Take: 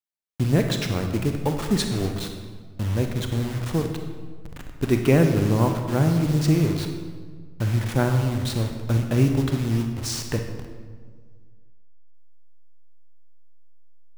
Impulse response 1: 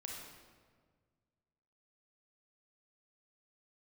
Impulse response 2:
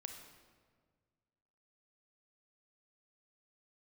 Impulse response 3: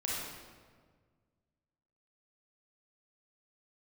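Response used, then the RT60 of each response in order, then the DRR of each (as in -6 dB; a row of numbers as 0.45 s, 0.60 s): 2; 1.7 s, 1.7 s, 1.6 s; -1.5 dB, 4.5 dB, -5.5 dB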